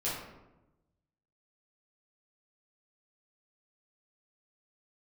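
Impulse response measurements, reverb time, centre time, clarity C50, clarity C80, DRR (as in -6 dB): 1.0 s, 61 ms, 1.5 dB, 4.5 dB, -9.5 dB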